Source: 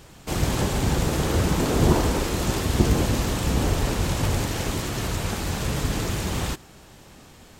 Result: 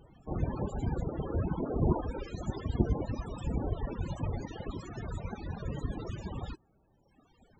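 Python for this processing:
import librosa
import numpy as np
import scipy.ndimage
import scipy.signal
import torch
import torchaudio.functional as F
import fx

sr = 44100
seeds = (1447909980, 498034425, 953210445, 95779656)

y = fx.dereverb_blind(x, sr, rt60_s=2.0)
y = fx.spec_topn(y, sr, count=32)
y = y * 10.0 ** (-7.0 / 20.0)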